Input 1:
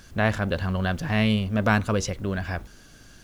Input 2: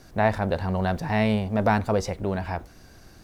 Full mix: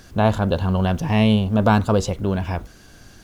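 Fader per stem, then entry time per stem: +1.0, 0.0 dB; 0.00, 0.00 s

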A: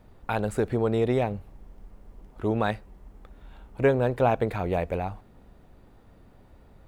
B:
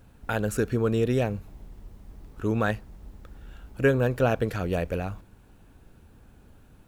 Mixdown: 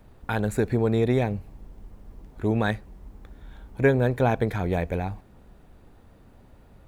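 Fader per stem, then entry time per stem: +0.5, -6.5 dB; 0.00, 0.00 s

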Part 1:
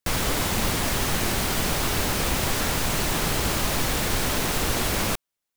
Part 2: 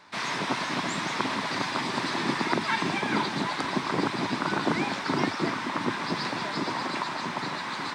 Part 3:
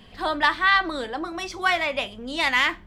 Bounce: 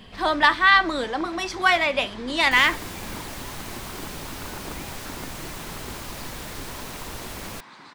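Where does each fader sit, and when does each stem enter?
-11.5, -13.5, +3.0 dB; 2.45, 0.00, 0.00 s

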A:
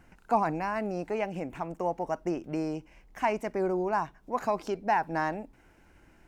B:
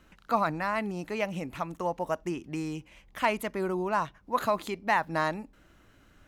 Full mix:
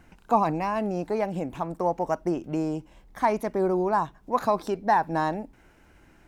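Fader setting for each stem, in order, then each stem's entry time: +2.5, -6.0 dB; 0.00, 0.00 s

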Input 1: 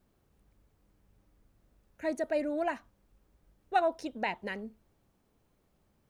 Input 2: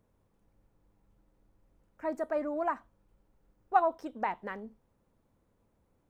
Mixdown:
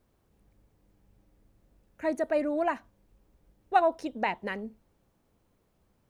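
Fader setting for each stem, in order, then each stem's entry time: 0.0, -3.5 dB; 0.00, 0.00 s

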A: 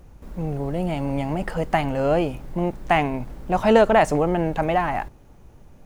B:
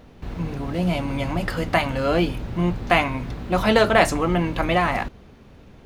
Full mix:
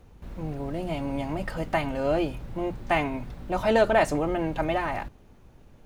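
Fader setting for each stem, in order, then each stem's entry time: -6.0, -12.0 dB; 0.00, 0.00 s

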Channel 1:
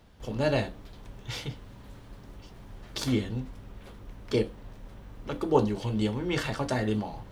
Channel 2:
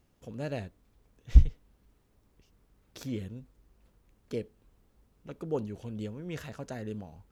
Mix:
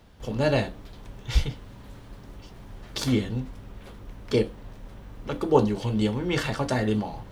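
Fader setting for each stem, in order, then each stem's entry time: +3.0, -5.5 dB; 0.00, 0.00 s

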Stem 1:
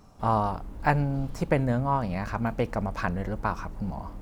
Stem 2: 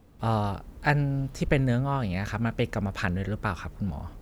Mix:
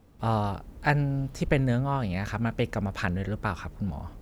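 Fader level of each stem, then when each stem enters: -18.0, -1.5 dB; 0.00, 0.00 s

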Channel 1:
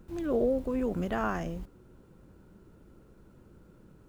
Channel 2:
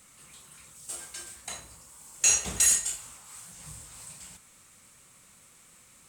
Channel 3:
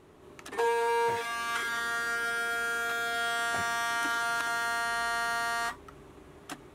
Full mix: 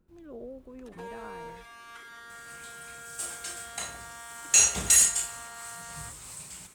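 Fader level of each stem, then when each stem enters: -15.5, +2.5, -15.0 dB; 0.00, 2.30, 0.40 s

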